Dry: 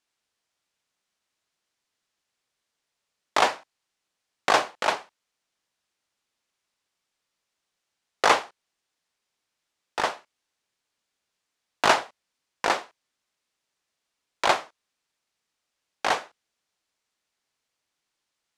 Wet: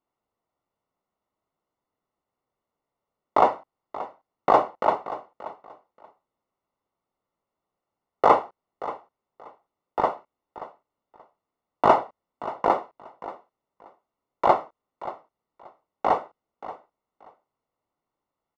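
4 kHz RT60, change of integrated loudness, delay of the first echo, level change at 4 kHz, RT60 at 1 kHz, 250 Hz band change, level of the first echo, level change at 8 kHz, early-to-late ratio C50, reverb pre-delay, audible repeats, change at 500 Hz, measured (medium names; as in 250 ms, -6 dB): no reverb, +0.5 dB, 580 ms, -15.0 dB, no reverb, +5.0 dB, -15.5 dB, under -20 dB, no reverb, no reverb, 2, +5.0 dB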